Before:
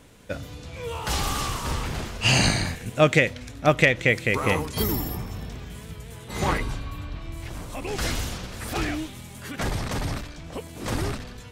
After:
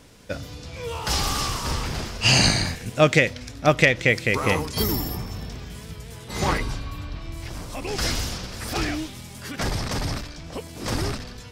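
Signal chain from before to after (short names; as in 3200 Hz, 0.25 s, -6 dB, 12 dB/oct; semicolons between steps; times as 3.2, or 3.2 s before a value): bell 5100 Hz +7.5 dB 0.48 oct; gain +1 dB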